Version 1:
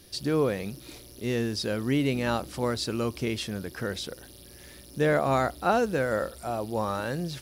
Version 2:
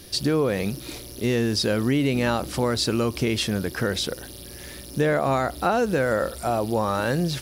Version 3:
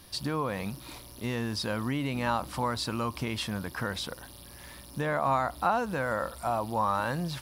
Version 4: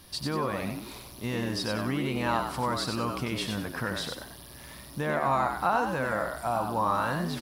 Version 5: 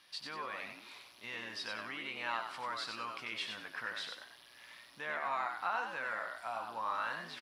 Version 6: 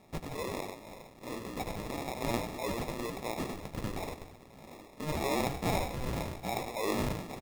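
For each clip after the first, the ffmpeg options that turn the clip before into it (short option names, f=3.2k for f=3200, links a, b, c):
-filter_complex "[0:a]asplit=2[a][b];[b]alimiter=limit=-22dB:level=0:latency=1,volume=-2.5dB[c];[a][c]amix=inputs=2:normalize=0,acompressor=threshold=-22dB:ratio=6,volume=4dB"
-af "equalizer=f=400:t=o:w=0.67:g=-8,equalizer=f=1k:t=o:w=0.67:g=11,equalizer=f=6.3k:t=o:w=0.67:g=-4,volume=-7.5dB"
-filter_complex "[0:a]asplit=5[a][b][c][d][e];[b]adelay=93,afreqshift=76,volume=-5dB[f];[c]adelay=186,afreqshift=152,volume=-15.2dB[g];[d]adelay=279,afreqshift=228,volume=-25.3dB[h];[e]adelay=372,afreqshift=304,volume=-35.5dB[i];[a][f][g][h][i]amix=inputs=5:normalize=0"
-filter_complex "[0:a]bandpass=f=2.3k:t=q:w=1.1:csg=0,asplit=2[a][b];[b]adelay=18,volume=-10.5dB[c];[a][c]amix=inputs=2:normalize=0,volume=-3dB"
-af "acrusher=samples=29:mix=1:aa=0.000001,volume=5dB"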